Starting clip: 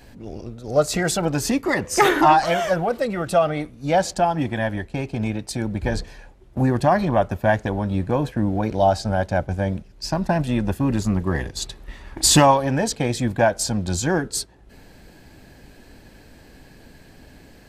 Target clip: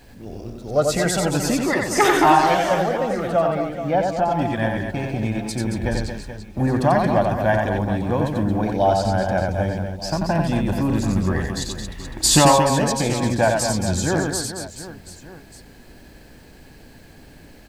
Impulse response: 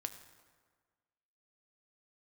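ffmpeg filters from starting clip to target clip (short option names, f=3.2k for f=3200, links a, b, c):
-filter_complex "[0:a]asettb=1/sr,asplit=3[a][b][c];[a]atrim=end=2.744[d];[b]atrim=start=2.74:end=4.31,asetpts=PTS-STARTPTS,afade=t=in:d=0.004:c=qsin,afade=t=out:st=1.566:d=0.004:c=qsin,lowpass=f=1.4k:p=1[e];[c]atrim=start=4.306[f];[d][e]acrossfade=d=0.004:c1=hsin:c2=qsin[g];[g][f]acrossfade=d=0.004:c1=qsin:c2=hsin,acrusher=bits=9:mix=0:aa=0.000001,aecho=1:1:90|225|427.5|731.2|1187:0.631|0.398|0.251|0.158|0.1,volume=-1dB"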